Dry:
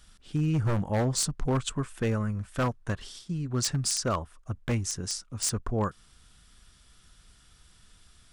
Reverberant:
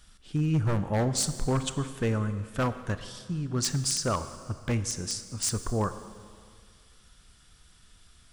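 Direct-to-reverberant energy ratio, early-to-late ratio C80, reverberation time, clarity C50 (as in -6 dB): 10.5 dB, 12.5 dB, 2.0 s, 12.0 dB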